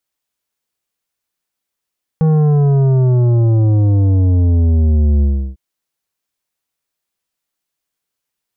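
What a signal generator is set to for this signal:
bass drop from 160 Hz, over 3.35 s, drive 10 dB, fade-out 0.34 s, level −10 dB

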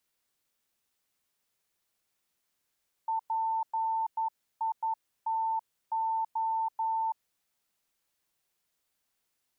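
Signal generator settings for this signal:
Morse code "PITO" 11 words per minute 894 Hz −27 dBFS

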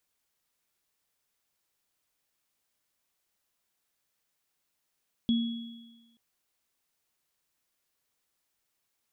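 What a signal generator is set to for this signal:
inharmonic partials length 0.88 s, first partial 232 Hz, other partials 3,350 Hz, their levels −12 dB, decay 1.18 s, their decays 1.42 s, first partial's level −21 dB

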